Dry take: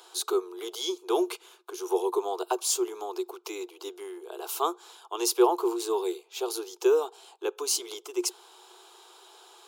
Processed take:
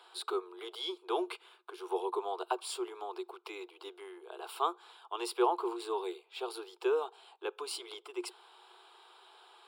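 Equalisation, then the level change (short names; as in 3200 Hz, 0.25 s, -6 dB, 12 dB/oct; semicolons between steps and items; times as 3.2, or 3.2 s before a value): running mean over 7 samples; HPF 980 Hz 6 dB/oct; 0.0 dB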